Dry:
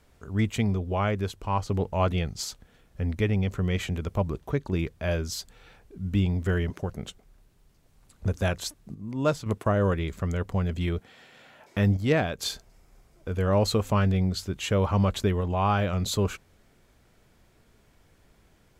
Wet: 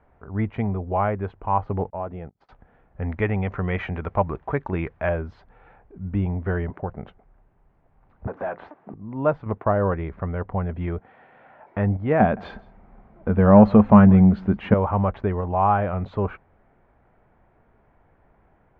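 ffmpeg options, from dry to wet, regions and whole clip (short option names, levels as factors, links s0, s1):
-filter_complex "[0:a]asettb=1/sr,asplit=3[s0][s1][s2];[s0]atrim=end=1.904[s3];[s1]atrim=start=1.9:end=2.49,asetpts=PTS-STARTPTS,afade=t=in:d=0.004:c=qsin,afade=t=out:st=0.586:d=0.004:c=qsin,agate=range=0.0178:threshold=0.0251:ratio=16:release=100:detection=peak,equalizer=f=360:w=0.41:g=7,acompressor=threshold=0.00708:ratio=2:attack=3.2:release=140:knee=1:detection=peak[s4];[s2]atrim=start=2.486[s5];[s3][s4]acrossfade=d=0.004:c1=hsin:c2=qsin[s6];[s6][s5]acrossfade=d=0.004:c1=qsin:c2=hsin,asettb=1/sr,asplit=3[s7][s8][s9];[s7]atrim=end=3.024[s10];[s8]atrim=start=3.02:end=5.09,asetpts=PTS-STARTPTS,afade=t=in:d=0.004:c=qsin,afade=t=out:st=2.066:d=0.004:c=qsin,lowpass=f=6300:t=q:w=5.2,equalizer=f=2200:t=o:w=2.7:g=7.5[s11];[s9]atrim=start=5.086[s12];[s10][s11]acrossfade=d=0.004:c1=hsin:c2=qsin[s13];[s13][s12]acrossfade=d=0.004:c1=qsin:c2=hsin,asettb=1/sr,asplit=3[s14][s15][s16];[s14]atrim=end=8.274[s17];[s15]atrim=start=8.27:end=8.94,asetpts=PTS-STARTPTS,afade=t=in:d=0.004:c=qsin,afade=t=out:st=0.666:d=0.004:c=qsin,highpass=200,acompressor=threshold=0.02:ratio=4:attack=3.2:release=140:knee=1:detection=peak,asplit=2[s18][s19];[s19]highpass=f=720:p=1,volume=12.6,asoftclip=type=tanh:threshold=0.0794[s20];[s18][s20]amix=inputs=2:normalize=0,lowpass=f=1200:p=1,volume=0.501[s21];[s16]atrim=start=8.936[s22];[s17][s21]acrossfade=d=0.004:c1=hsin:c2=qsin[s23];[s23][s22]acrossfade=d=0.004:c1=qsin:c2=hsin,asettb=1/sr,asplit=3[s24][s25][s26];[s24]atrim=end=12.204[s27];[s25]atrim=start=12.2:end=14.74,asetpts=PTS-STARTPTS,afade=t=in:d=0.004:c=qsin,afade=t=out:st=2.536:d=0.004:c=qsin,equalizer=f=210:w=3.6:g=14,acontrast=39,aecho=1:1:165:0.0631,atrim=end_sample=112014[s28];[s26]atrim=start=14.736[s29];[s27][s28]acrossfade=d=0.004:c1=hsin:c2=qsin[s30];[s30][s29]acrossfade=d=0.004:c1=qsin:c2=hsin,lowpass=f=2000:w=0.5412,lowpass=f=2000:w=1.3066,equalizer=f=800:t=o:w=0.91:g=8.5"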